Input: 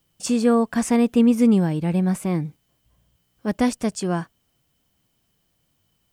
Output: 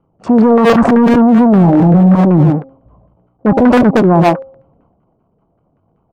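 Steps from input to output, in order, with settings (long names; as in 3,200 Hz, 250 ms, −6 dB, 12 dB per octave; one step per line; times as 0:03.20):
adaptive Wiener filter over 25 samples
low-shelf EQ 220 Hz +3 dB
leveller curve on the samples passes 2
hum removal 268.2 Hz, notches 3
auto-filter low-pass saw down 5.2 Hz 550–1,600 Hz
0:01.63–0:02.15: double-tracking delay 23 ms −3.5 dB
far-end echo of a speakerphone 120 ms, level −9 dB
transient designer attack −11 dB, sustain +7 dB
low-shelf EQ 100 Hz −9.5 dB
boost into a limiter +19 dB
level −1 dB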